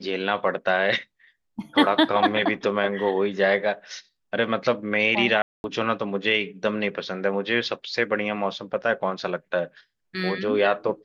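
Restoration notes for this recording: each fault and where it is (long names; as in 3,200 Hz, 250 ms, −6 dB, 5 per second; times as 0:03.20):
0:05.42–0:05.64: drop-out 221 ms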